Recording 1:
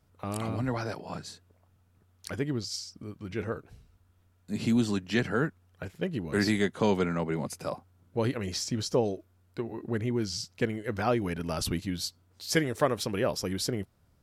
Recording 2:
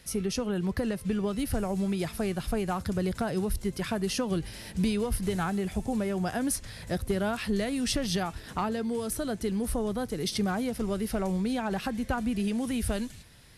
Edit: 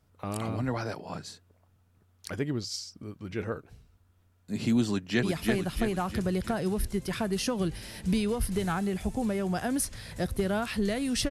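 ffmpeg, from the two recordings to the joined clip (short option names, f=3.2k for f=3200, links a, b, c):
-filter_complex "[0:a]apad=whole_dur=11.3,atrim=end=11.3,atrim=end=5.232[a];[1:a]atrim=start=1.938:end=8.01[b];[a][b]acrossfade=d=0.004:c1=hsin:c2=hsin,asplit=2[c][d];[d]afade=t=in:st=4.91:d=0.01,afade=t=out:st=5.23:d=0.01,aecho=0:1:330|660|990|1320|1650|1980|2310|2640:0.668344|0.367589|0.202174|0.111196|0.0611576|0.0336367|0.0185002|0.0101751[e];[c][e]amix=inputs=2:normalize=0"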